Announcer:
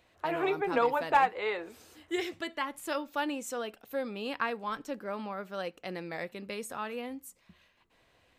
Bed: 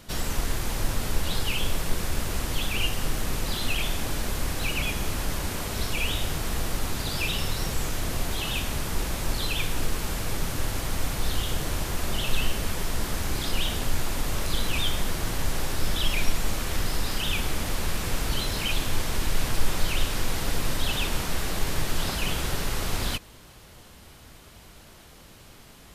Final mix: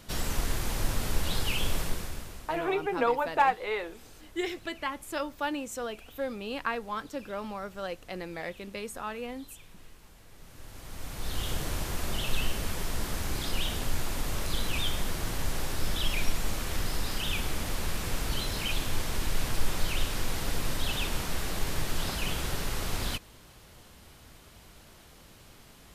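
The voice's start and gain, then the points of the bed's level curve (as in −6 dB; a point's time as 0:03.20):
2.25 s, +0.5 dB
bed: 0:01.81 −2.5 dB
0:02.78 −25.5 dB
0:10.30 −25.5 dB
0:11.46 −4 dB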